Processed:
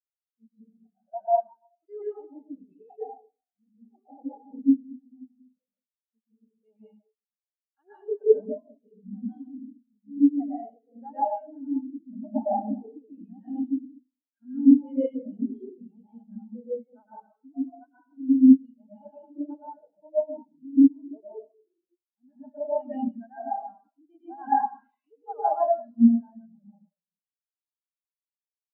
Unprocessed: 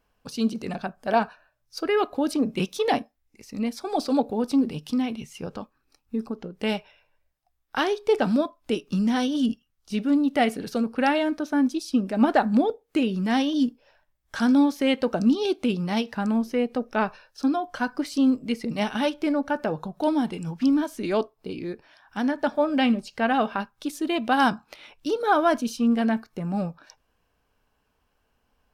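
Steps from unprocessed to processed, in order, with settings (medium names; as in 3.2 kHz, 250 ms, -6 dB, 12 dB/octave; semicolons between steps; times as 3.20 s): 24.13–26.39 s: one-bit delta coder 32 kbps, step -26.5 dBFS; high-pass 470 Hz 6 dB/octave; reverberation RT60 1.5 s, pre-delay 100 ms, DRR -6 dB; spectral contrast expander 4:1; trim -2 dB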